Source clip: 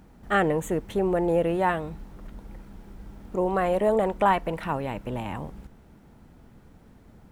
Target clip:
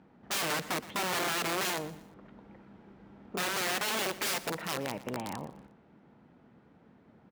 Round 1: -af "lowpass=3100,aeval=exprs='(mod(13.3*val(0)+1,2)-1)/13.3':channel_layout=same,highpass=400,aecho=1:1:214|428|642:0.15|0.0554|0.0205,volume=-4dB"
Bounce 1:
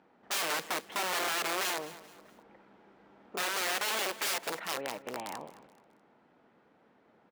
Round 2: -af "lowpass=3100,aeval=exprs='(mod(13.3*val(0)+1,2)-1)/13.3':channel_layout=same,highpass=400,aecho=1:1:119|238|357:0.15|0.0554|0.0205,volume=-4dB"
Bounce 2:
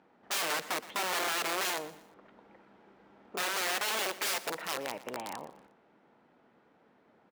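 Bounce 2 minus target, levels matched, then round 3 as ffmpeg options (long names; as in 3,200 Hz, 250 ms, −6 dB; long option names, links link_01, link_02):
125 Hz band −12.5 dB
-af "lowpass=3100,aeval=exprs='(mod(13.3*val(0)+1,2)-1)/13.3':channel_layout=same,highpass=160,aecho=1:1:119|238|357:0.15|0.0554|0.0205,volume=-4dB"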